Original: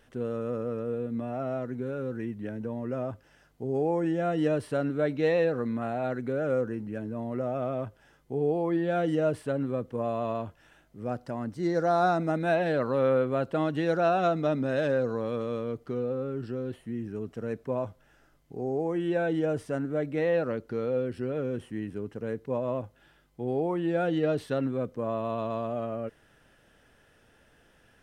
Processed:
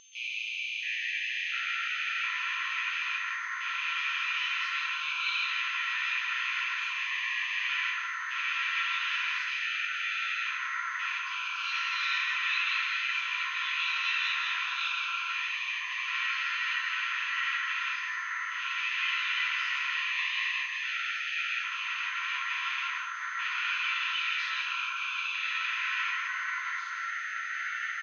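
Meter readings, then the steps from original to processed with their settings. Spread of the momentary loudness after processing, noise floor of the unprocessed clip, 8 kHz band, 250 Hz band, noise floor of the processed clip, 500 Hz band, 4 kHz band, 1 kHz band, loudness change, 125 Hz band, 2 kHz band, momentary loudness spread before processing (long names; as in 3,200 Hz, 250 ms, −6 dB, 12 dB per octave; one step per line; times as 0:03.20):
5 LU, −63 dBFS, can't be measured, below −40 dB, −36 dBFS, below −40 dB, +18.0 dB, −1.5 dB, 0.0 dB, below −40 dB, +13.5 dB, 10 LU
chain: loose part that buzzes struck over −43 dBFS, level −30 dBFS
Chebyshev high-pass with heavy ripple 2,300 Hz, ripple 3 dB
parametric band 5,900 Hz +7 dB 1.9 octaves
delay with pitch and tempo change per echo 625 ms, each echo −5 semitones, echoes 3, each echo −6 dB
rectangular room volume 490 cubic metres, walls furnished, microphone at 7.1 metres
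steady tone 6,300 Hz −40 dBFS
single-tap delay 166 ms −5.5 dB
downsampling to 16,000 Hz
high-frequency loss of the air 300 metres
level +5 dB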